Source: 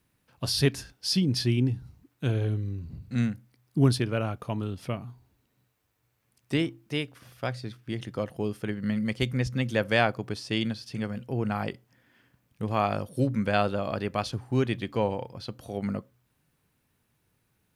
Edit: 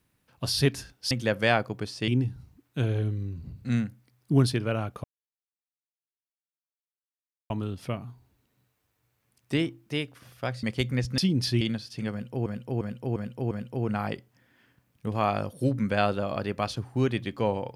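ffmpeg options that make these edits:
-filter_complex "[0:a]asplit=11[s0][s1][s2][s3][s4][s5][s6][s7][s8][s9][s10];[s0]atrim=end=1.112[s11];[s1]atrim=start=9.598:end=10.572[s12];[s2]atrim=start=1.538:end=4.5,asetpts=PTS-STARTPTS,afade=t=out:st=2.958:d=0.004:c=hsin,apad=pad_dur=2.46[s13];[s3]atrim=start=4.5:end=7.632,asetpts=PTS-STARTPTS,afade=t=in:d=0.004:c=hsin[s14];[s4]atrim=start=9.048:end=9.602[s15];[s5]atrim=start=1.108:end=1.542[s16];[s6]atrim=start=10.568:end=11.422[s17];[s7]atrim=start=11.068:end=11.422[s18];[s8]atrim=start=11.068:end=11.422[s19];[s9]atrim=start=11.068:end=11.422[s20];[s10]atrim=start=11.068[s21];[s11][s12]acrossfade=d=0.004:c1=hsin:c2=hsin[s22];[s13][s14]concat=n=2:v=0:a=1[s23];[s22][s23]acrossfade=d=0.004:c1=hsin:c2=hsin[s24];[s24][s15]acrossfade=d=0.004:c1=hsin:c2=hsin[s25];[s25][s16]acrossfade=d=0.004:c1=hsin:c2=hsin[s26];[s26][s17]acrossfade=d=0.004:c1=hsin:c2=hsin[s27];[s27][s18]acrossfade=d=0.004:c1=hsin:c2=hsin[s28];[s28][s19]acrossfade=d=0.004:c1=hsin:c2=hsin[s29];[s29][s20]acrossfade=d=0.004:c1=hsin:c2=hsin[s30];[s30][s21]acrossfade=d=0.004:c1=hsin:c2=hsin"

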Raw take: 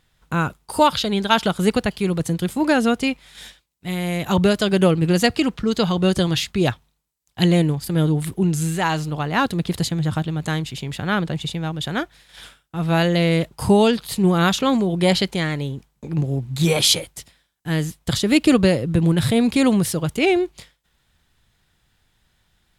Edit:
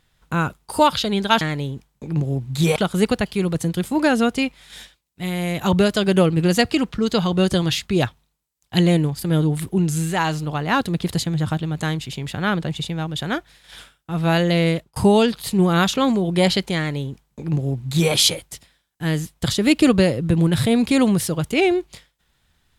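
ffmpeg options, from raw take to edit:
-filter_complex "[0:a]asplit=4[s0][s1][s2][s3];[s0]atrim=end=1.412[s4];[s1]atrim=start=15.418:end=16.772[s5];[s2]atrim=start=1.408:end=13.61,asetpts=PTS-STARTPTS,afade=t=out:st=11.922:d=0.28[s6];[s3]atrim=start=13.61,asetpts=PTS-STARTPTS,afade=t=in:d=0.004:c=hsin[s7];[s4][s5]acrossfade=d=0.004:c1=hsin:c2=hsin[s8];[s6][s7]concat=n=2:v=0:a=1[s9];[s8][s9]acrossfade=d=0.004:c1=hsin:c2=hsin"

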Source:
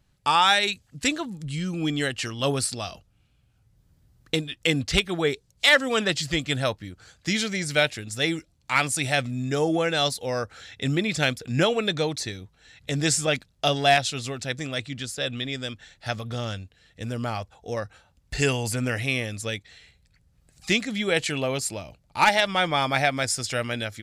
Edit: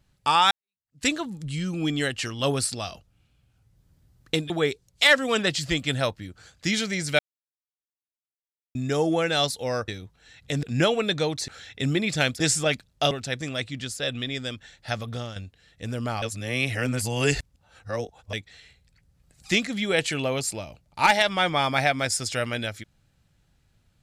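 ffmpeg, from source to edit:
-filter_complex "[0:a]asplit=13[s0][s1][s2][s3][s4][s5][s6][s7][s8][s9][s10][s11][s12];[s0]atrim=end=0.51,asetpts=PTS-STARTPTS,afade=t=out:st=0.506:d=0.004:c=hsin[s13];[s1]atrim=start=0.51:end=4.502,asetpts=PTS-STARTPTS,afade=t=in:d=0.54:c=exp[s14];[s2]atrim=start=5.118:end=7.81,asetpts=PTS-STARTPTS,afade=t=out:st=2.688:d=0.004:c=hsin[s15];[s3]atrim=start=7.81:end=9.37,asetpts=PTS-STARTPTS,volume=0[s16];[s4]atrim=start=9.37:end=10.502,asetpts=PTS-STARTPTS,afade=t=in:d=0.004:c=hsin[s17];[s5]atrim=start=12.268:end=13.022[s18];[s6]atrim=start=11.418:end=12.272[s19];[s7]atrim=start=10.498:end=11.422[s20];[s8]atrim=start=13.018:end=13.732[s21];[s9]atrim=start=14.288:end=16.54,asetpts=PTS-STARTPTS,afade=t=out:st=2.002:d=0.25:silence=0.316228[s22];[s10]atrim=start=16.54:end=17.402,asetpts=PTS-STARTPTS,afade=t=in:d=0.004:c=hsin:silence=0.316228[s23];[s11]atrim=start=17.398:end=19.512,asetpts=PTS-STARTPTS,areverse[s24];[s12]atrim=start=19.508[s25];[s13][s14]concat=n=2:v=0:a=1[s26];[s15][s16][s17]concat=n=3:v=0:a=1[s27];[s26][s27]acrossfade=d=0.004:c1=hsin:c2=hsin[s28];[s28][s18]acrossfade=d=0.004:c1=hsin:c2=hsin[s29];[s29][s19]acrossfade=d=0.004:c1=hsin:c2=hsin[s30];[s30][s20]acrossfade=d=0.004:c1=hsin:c2=hsin[s31];[s31][s21]acrossfade=d=0.004:c1=hsin:c2=hsin[s32];[s22][s23]concat=n=2:v=0:a=1[s33];[s32][s33]acrossfade=d=0.004:c1=hsin:c2=hsin[s34];[s34][s24]acrossfade=d=0.004:c1=hsin:c2=hsin[s35];[s35][s25]acrossfade=d=0.004:c1=hsin:c2=hsin"

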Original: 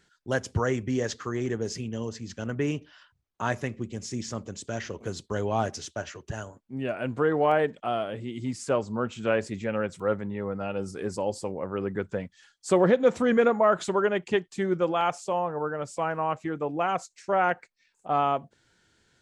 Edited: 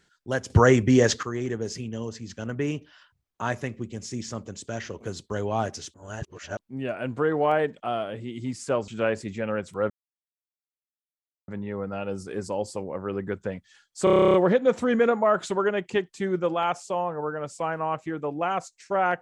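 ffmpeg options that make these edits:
-filter_complex "[0:a]asplit=17[s0][s1][s2][s3][s4][s5][s6][s7][s8][s9][s10][s11][s12][s13][s14][s15][s16];[s0]atrim=end=0.502[s17];[s1]atrim=start=0.498:end=1.232,asetpts=PTS-STARTPTS,volume=2.99[s18];[s2]atrim=start=1.228:end=5.942[s19];[s3]atrim=start=5.938:end=6.592,asetpts=PTS-STARTPTS,areverse[s20];[s4]atrim=start=6.588:end=8.882[s21];[s5]atrim=start=9.138:end=10.16,asetpts=PTS-STARTPTS,afade=t=out:st=1.018:d=0.004:c=hsin,apad=pad_dur=1.58[s22];[s6]atrim=start=10.16:end=12.752,asetpts=PTS-STARTPTS,afade=t=in:d=0.004:c=hsin[s23];[s7]atrim=start=12.718:end=12.752[s24];[s8]atrim=start=12.718:end=12.752[s25];[s9]atrim=start=12.718:end=12.752[s26];[s10]atrim=start=12.718:end=12.752[s27];[s11]atrim=start=12.718:end=12.752[s28];[s12]atrim=start=12.718:end=12.752[s29];[s13]atrim=start=12.718:end=12.752[s30];[s14]atrim=start=12.718:end=12.752[s31];[s15]atrim=start=12.718:end=12.752[s32];[s16]atrim=start=12.718[s33];[s17][s18]acrossfade=d=0.004:c1=hsin:c2=hsin[s34];[s34][s19]acrossfade=d=0.004:c1=hsin:c2=hsin[s35];[s35][s20]acrossfade=d=0.004:c1=hsin:c2=hsin[s36];[s36][s21]acrossfade=d=0.004:c1=hsin:c2=hsin[s37];[s22][s23]concat=n=2:v=0:a=1[s38];[s37][s38]acrossfade=d=0.004:c1=hsin:c2=hsin[s39];[s39][s24]acrossfade=d=0.004:c1=hsin:c2=hsin[s40];[s40][s25]acrossfade=d=0.004:c1=hsin:c2=hsin[s41];[s41][s26]acrossfade=d=0.004:c1=hsin:c2=hsin[s42];[s42][s27]acrossfade=d=0.004:c1=hsin:c2=hsin[s43];[s43][s28]acrossfade=d=0.004:c1=hsin:c2=hsin[s44];[s44][s29]acrossfade=d=0.004:c1=hsin:c2=hsin[s45];[s45][s30]acrossfade=d=0.004:c1=hsin:c2=hsin[s46];[s46][s31]acrossfade=d=0.004:c1=hsin:c2=hsin[s47];[s47][s32]acrossfade=d=0.004:c1=hsin:c2=hsin[s48];[s48][s33]acrossfade=d=0.004:c1=hsin:c2=hsin"

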